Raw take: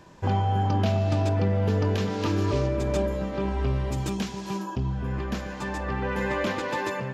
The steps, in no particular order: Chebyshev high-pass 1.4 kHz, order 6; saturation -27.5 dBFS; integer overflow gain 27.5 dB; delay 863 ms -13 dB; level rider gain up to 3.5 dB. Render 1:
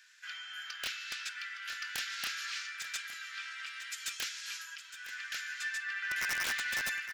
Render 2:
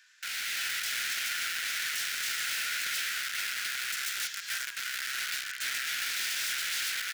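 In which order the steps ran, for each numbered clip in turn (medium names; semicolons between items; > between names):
Chebyshev high-pass > integer overflow > level rider > saturation > delay; integer overflow > Chebyshev high-pass > saturation > delay > level rider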